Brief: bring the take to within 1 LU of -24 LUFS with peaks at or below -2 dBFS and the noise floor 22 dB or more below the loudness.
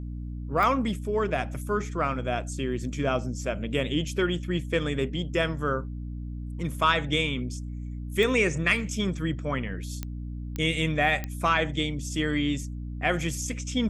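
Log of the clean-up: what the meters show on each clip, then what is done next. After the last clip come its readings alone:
clicks found 5; hum 60 Hz; highest harmonic 300 Hz; hum level -32 dBFS; loudness -28.0 LUFS; peak level -9.5 dBFS; loudness target -24.0 LUFS
-> de-click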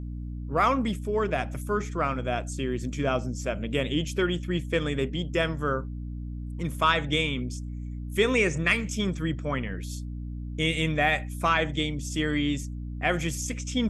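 clicks found 0; hum 60 Hz; highest harmonic 300 Hz; hum level -32 dBFS
-> hum notches 60/120/180/240/300 Hz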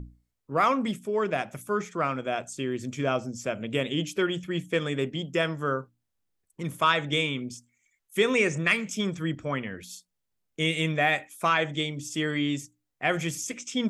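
hum not found; loudness -28.0 LUFS; peak level -9.5 dBFS; loudness target -24.0 LUFS
-> trim +4 dB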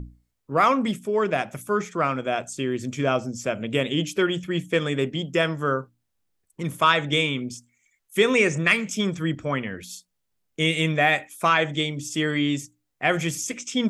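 loudness -24.0 LUFS; peak level -5.5 dBFS; noise floor -77 dBFS

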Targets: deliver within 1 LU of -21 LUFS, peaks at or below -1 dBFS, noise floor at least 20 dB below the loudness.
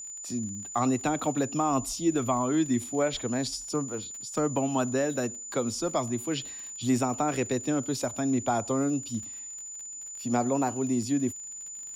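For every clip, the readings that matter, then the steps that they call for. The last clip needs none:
tick rate 37 per s; steady tone 7 kHz; tone level -38 dBFS; loudness -29.0 LUFS; peak level -15.0 dBFS; loudness target -21.0 LUFS
-> de-click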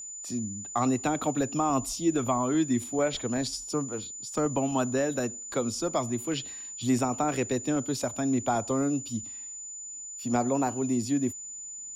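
tick rate 0.25 per s; steady tone 7 kHz; tone level -38 dBFS
-> band-stop 7 kHz, Q 30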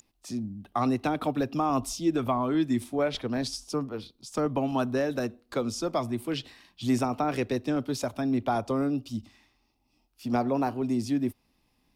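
steady tone not found; loudness -29.5 LUFS; peak level -15.0 dBFS; loudness target -21.0 LUFS
-> trim +8.5 dB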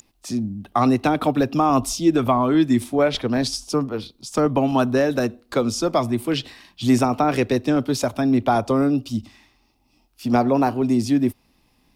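loudness -21.0 LUFS; peak level -6.5 dBFS; noise floor -63 dBFS

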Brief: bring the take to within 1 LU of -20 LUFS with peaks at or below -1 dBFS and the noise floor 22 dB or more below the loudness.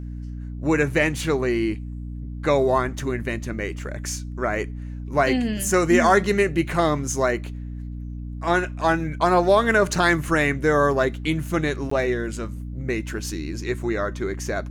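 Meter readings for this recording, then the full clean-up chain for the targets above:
dropouts 1; longest dropout 14 ms; hum 60 Hz; highest harmonic 300 Hz; hum level -30 dBFS; loudness -22.5 LUFS; peak level -6.0 dBFS; loudness target -20.0 LUFS
-> interpolate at 11.90 s, 14 ms; de-hum 60 Hz, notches 5; trim +2.5 dB

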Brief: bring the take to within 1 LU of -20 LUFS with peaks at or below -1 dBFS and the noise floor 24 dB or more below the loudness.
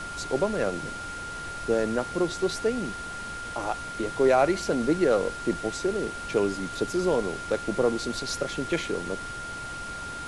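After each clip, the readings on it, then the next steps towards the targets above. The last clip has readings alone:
steady tone 1.4 kHz; tone level -35 dBFS; noise floor -37 dBFS; noise floor target -52 dBFS; loudness -28.0 LUFS; peak level -10.0 dBFS; loudness target -20.0 LUFS
-> band-stop 1.4 kHz, Q 30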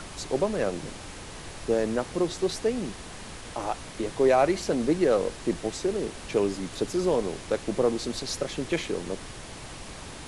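steady tone not found; noise floor -42 dBFS; noise floor target -52 dBFS
-> noise print and reduce 10 dB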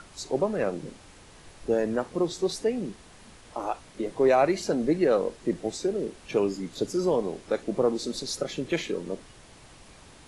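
noise floor -52 dBFS; loudness -28.0 LUFS; peak level -10.5 dBFS; loudness target -20.0 LUFS
-> trim +8 dB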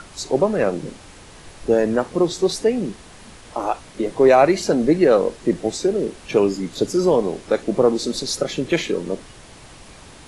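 loudness -20.0 LUFS; peak level -2.5 dBFS; noise floor -44 dBFS

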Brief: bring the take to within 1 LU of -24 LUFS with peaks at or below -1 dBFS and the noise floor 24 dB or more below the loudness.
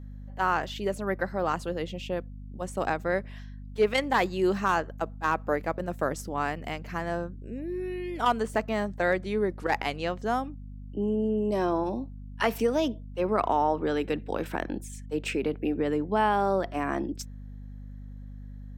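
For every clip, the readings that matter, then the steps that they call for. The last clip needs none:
hum 50 Hz; highest harmonic 250 Hz; hum level -39 dBFS; loudness -29.0 LUFS; peak level -10.0 dBFS; loudness target -24.0 LUFS
-> hum notches 50/100/150/200/250 Hz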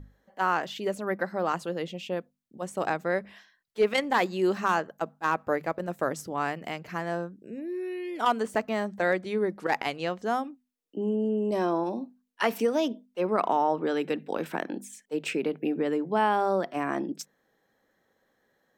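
hum not found; loudness -29.0 LUFS; peak level -10.5 dBFS; loudness target -24.0 LUFS
-> trim +5 dB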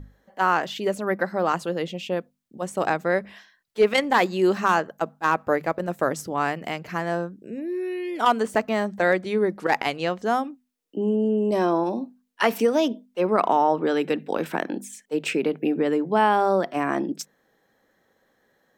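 loudness -24.0 LUFS; peak level -5.5 dBFS; noise floor -68 dBFS

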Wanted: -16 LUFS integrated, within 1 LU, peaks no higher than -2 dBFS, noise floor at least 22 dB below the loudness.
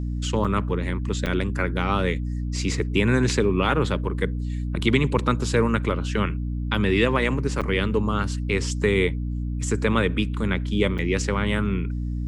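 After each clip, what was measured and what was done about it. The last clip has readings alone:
dropouts 4; longest dropout 7.0 ms; hum 60 Hz; highest harmonic 300 Hz; hum level -25 dBFS; loudness -24.0 LUFS; peak level -6.5 dBFS; loudness target -16.0 LUFS
-> interpolate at 0.44/1.26/7.61/10.98 s, 7 ms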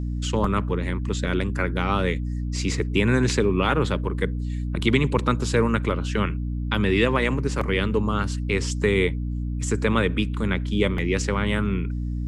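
dropouts 0; hum 60 Hz; highest harmonic 300 Hz; hum level -25 dBFS
-> hum notches 60/120/180/240/300 Hz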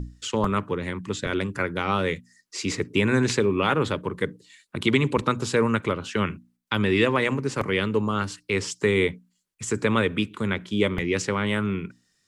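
hum not found; loudness -25.0 LUFS; peak level -7.0 dBFS; loudness target -16.0 LUFS
-> trim +9 dB; peak limiter -2 dBFS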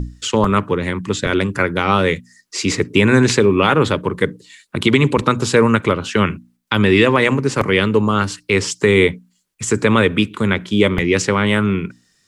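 loudness -16.5 LUFS; peak level -2.0 dBFS; noise floor -62 dBFS

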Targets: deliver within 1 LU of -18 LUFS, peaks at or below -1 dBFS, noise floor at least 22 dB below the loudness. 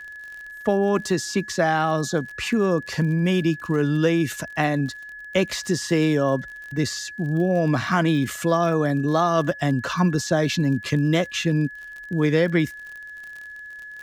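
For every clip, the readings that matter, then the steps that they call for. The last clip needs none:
tick rate 47 per s; steady tone 1.7 kHz; tone level -36 dBFS; loudness -22.5 LUFS; peak level -8.0 dBFS; loudness target -18.0 LUFS
-> de-click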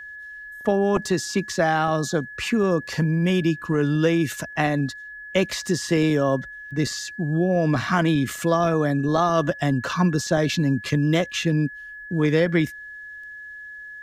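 tick rate 0.21 per s; steady tone 1.7 kHz; tone level -36 dBFS
-> band-stop 1.7 kHz, Q 30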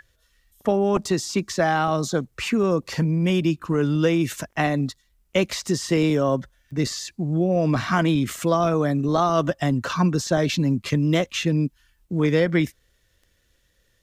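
steady tone not found; loudness -22.5 LUFS; peak level -8.5 dBFS; loudness target -18.0 LUFS
-> trim +4.5 dB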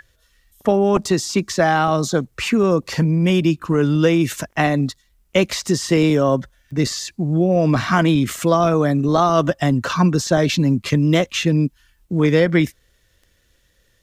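loudness -18.0 LUFS; peak level -4.0 dBFS; noise floor -61 dBFS

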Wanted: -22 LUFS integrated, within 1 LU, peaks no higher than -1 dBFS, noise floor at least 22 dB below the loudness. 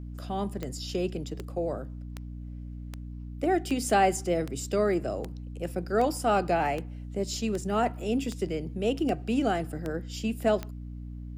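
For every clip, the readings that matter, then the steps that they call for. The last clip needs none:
clicks found 14; hum 60 Hz; highest harmonic 300 Hz; hum level -36 dBFS; loudness -29.5 LUFS; peak level -12.0 dBFS; loudness target -22.0 LUFS
-> de-click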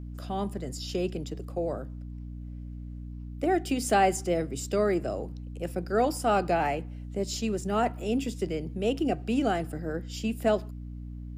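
clicks found 0; hum 60 Hz; highest harmonic 300 Hz; hum level -36 dBFS
-> hum notches 60/120/180/240/300 Hz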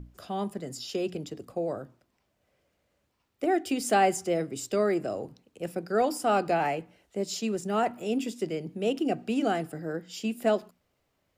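hum not found; loudness -29.5 LUFS; peak level -12.0 dBFS; loudness target -22.0 LUFS
-> trim +7.5 dB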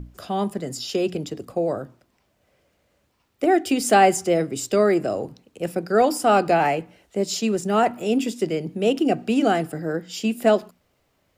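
loudness -22.0 LUFS; peak level -4.5 dBFS; noise floor -68 dBFS

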